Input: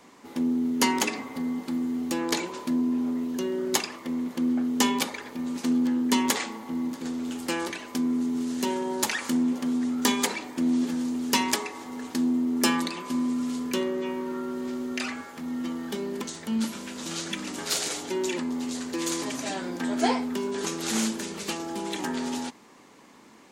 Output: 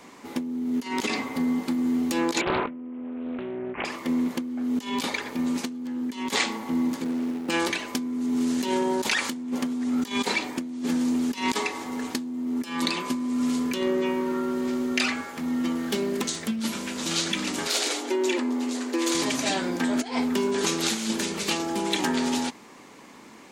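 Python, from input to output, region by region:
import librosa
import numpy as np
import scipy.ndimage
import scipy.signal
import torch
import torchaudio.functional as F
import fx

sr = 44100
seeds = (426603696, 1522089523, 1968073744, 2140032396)

y = fx.chain(x, sr, fx.over_compress(threshold_db=-37.0, ratio=-1.0),
    fx.resample_bad(factor=8, down='none', up='filtered'),
    fx.doppler_dist(depth_ms=0.56), at=(2.41, 3.85))
y = fx.chain(y, sr, fx.median_filter(points=41),
    fx.highpass(hz=160.0, slope=12), at=(7.04, 7.5))
y = fx.chain(y, sr, fx.high_shelf(hz=7400.0, db=5.5),
    fx.notch(hz=890.0, q=9.3),
    fx.doppler_dist(depth_ms=0.2), at=(15.75, 16.61))
y = fx.chain(y, sr, fx.brickwall_highpass(low_hz=230.0),
    fx.high_shelf(hz=2300.0, db=-5.5), at=(17.67, 19.15))
y = fx.dynamic_eq(y, sr, hz=3800.0, q=1.4, threshold_db=-42.0, ratio=4.0, max_db=5)
y = fx.over_compress(y, sr, threshold_db=-28.0, ratio=-0.5)
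y = fx.peak_eq(y, sr, hz=2300.0, db=2.5, octaves=0.37)
y = y * 10.0 ** (3.0 / 20.0)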